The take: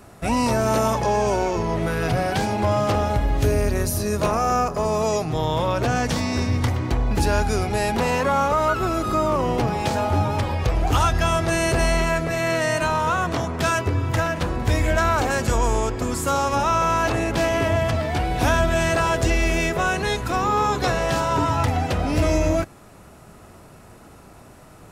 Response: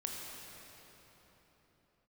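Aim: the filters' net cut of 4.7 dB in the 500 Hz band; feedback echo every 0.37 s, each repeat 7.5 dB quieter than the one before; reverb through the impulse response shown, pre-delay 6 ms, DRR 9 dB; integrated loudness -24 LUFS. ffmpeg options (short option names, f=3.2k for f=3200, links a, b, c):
-filter_complex "[0:a]equalizer=f=500:t=o:g=-6.5,aecho=1:1:370|740|1110|1480|1850:0.422|0.177|0.0744|0.0312|0.0131,asplit=2[a][b];[1:a]atrim=start_sample=2205,adelay=6[c];[b][c]afir=irnorm=-1:irlink=0,volume=-10dB[d];[a][d]amix=inputs=2:normalize=0,volume=-2dB"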